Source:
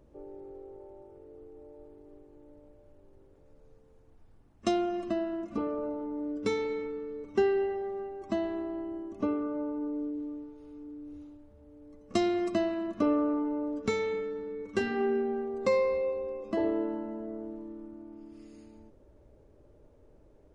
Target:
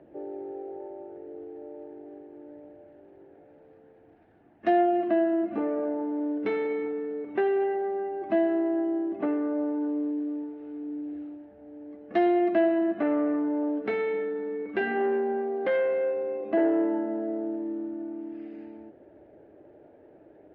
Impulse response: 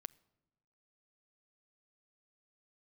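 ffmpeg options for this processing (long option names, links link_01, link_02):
-filter_complex "[0:a]bandreject=frequency=60:width_type=h:width=6,bandreject=frequency=120:width_type=h:width=6,bandreject=frequency=180:width_type=h:width=6,bandreject=frequency=240:width_type=h:width=6,asplit=2[link_01][link_02];[link_02]acompressor=threshold=-40dB:ratio=8,volume=-3dB[link_03];[link_01][link_03]amix=inputs=2:normalize=0,flanger=delay=0.2:depth=1.2:regen=86:speed=0.73:shape=triangular,acrossover=split=390[link_04][link_05];[link_04]asoftclip=type=tanh:threshold=-35.5dB[link_06];[link_06][link_05]amix=inputs=2:normalize=0,acrusher=bits=8:mode=log:mix=0:aa=0.000001,aeval=exprs='0.1*sin(PI/2*2*val(0)/0.1)':channel_layout=same,highpass=180,equalizer=frequency=330:width_type=q:width=4:gain=7,equalizer=frequency=710:width_type=q:width=4:gain=10,equalizer=frequency=1100:width_type=q:width=4:gain=-8,equalizer=frequency=1700:width_type=q:width=4:gain=7,lowpass=frequency=2800:width=0.5412,lowpass=frequency=2800:width=1.3066,volume=-3.5dB"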